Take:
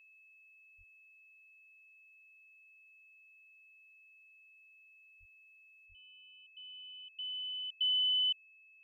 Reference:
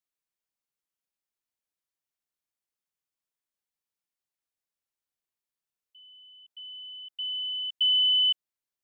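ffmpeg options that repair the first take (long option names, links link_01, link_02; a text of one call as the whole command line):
ffmpeg -i in.wav -filter_complex "[0:a]bandreject=frequency=2600:width=30,asplit=3[link_01][link_02][link_03];[link_01]afade=type=out:start_time=0.77:duration=0.02[link_04];[link_02]highpass=frequency=140:width=0.5412,highpass=frequency=140:width=1.3066,afade=type=in:start_time=0.77:duration=0.02,afade=type=out:start_time=0.89:duration=0.02[link_05];[link_03]afade=type=in:start_time=0.89:duration=0.02[link_06];[link_04][link_05][link_06]amix=inputs=3:normalize=0,asplit=3[link_07][link_08][link_09];[link_07]afade=type=out:start_time=5.19:duration=0.02[link_10];[link_08]highpass=frequency=140:width=0.5412,highpass=frequency=140:width=1.3066,afade=type=in:start_time=5.19:duration=0.02,afade=type=out:start_time=5.31:duration=0.02[link_11];[link_09]afade=type=in:start_time=5.31:duration=0.02[link_12];[link_10][link_11][link_12]amix=inputs=3:normalize=0,asplit=3[link_13][link_14][link_15];[link_13]afade=type=out:start_time=5.88:duration=0.02[link_16];[link_14]highpass=frequency=140:width=0.5412,highpass=frequency=140:width=1.3066,afade=type=in:start_time=5.88:duration=0.02,afade=type=out:start_time=6:duration=0.02[link_17];[link_15]afade=type=in:start_time=6:duration=0.02[link_18];[link_16][link_17][link_18]amix=inputs=3:normalize=0,asetnsamples=nb_out_samples=441:pad=0,asendcmd='5.86 volume volume 8dB',volume=0dB" out.wav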